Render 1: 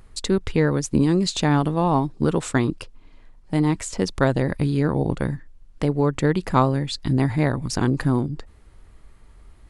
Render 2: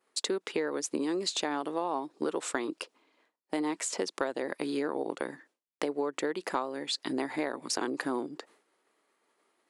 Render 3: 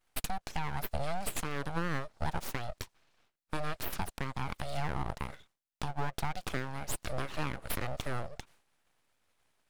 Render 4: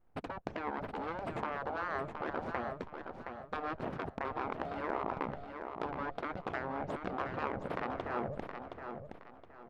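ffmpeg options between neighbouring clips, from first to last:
ffmpeg -i in.wav -af "highpass=frequency=320:width=0.5412,highpass=frequency=320:width=1.3066,agate=range=-33dB:threshold=-54dB:ratio=3:detection=peak,acompressor=threshold=-28dB:ratio=6" out.wav
ffmpeg -i in.wav -af "alimiter=limit=-19.5dB:level=0:latency=1:release=226,aeval=exprs='abs(val(0))':channel_layout=same" out.wav
ffmpeg -i in.wav -af "adynamicsmooth=sensitivity=0.5:basefreq=780,afftfilt=real='re*lt(hypot(re,im),0.0355)':imag='im*lt(hypot(re,im),0.0355)':win_size=1024:overlap=0.75,aecho=1:1:719|1438|2157|2876:0.447|0.138|0.0429|0.0133,volume=10dB" out.wav

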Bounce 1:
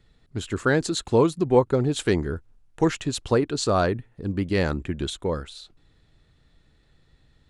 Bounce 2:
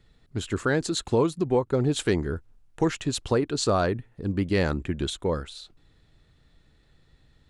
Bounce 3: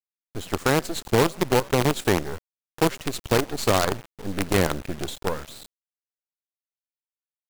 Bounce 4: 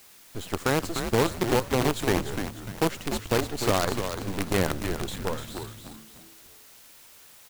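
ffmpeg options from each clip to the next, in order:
ffmpeg -i in.wav -af "alimiter=limit=-13dB:level=0:latency=1:release=291" out.wav
ffmpeg -i in.wav -filter_complex "[0:a]asplit=4[link_01][link_02][link_03][link_04];[link_02]adelay=86,afreqshift=74,volume=-21.5dB[link_05];[link_03]adelay=172,afreqshift=148,volume=-28.6dB[link_06];[link_04]adelay=258,afreqshift=222,volume=-35.8dB[link_07];[link_01][link_05][link_06][link_07]amix=inputs=4:normalize=0,acrusher=bits=4:dc=4:mix=0:aa=0.000001,volume=1.5dB" out.wav
ffmpeg -i in.wav -filter_complex "[0:a]aeval=exprs='val(0)+0.5*0.015*sgn(val(0))':channel_layout=same,asplit=2[link_01][link_02];[link_02]asplit=4[link_03][link_04][link_05][link_06];[link_03]adelay=297,afreqshift=-110,volume=-7dB[link_07];[link_04]adelay=594,afreqshift=-220,volume=-15.4dB[link_08];[link_05]adelay=891,afreqshift=-330,volume=-23.8dB[link_09];[link_06]adelay=1188,afreqshift=-440,volume=-32.2dB[link_10];[link_07][link_08][link_09][link_10]amix=inputs=4:normalize=0[link_11];[link_01][link_11]amix=inputs=2:normalize=0,volume=-4dB" out.wav

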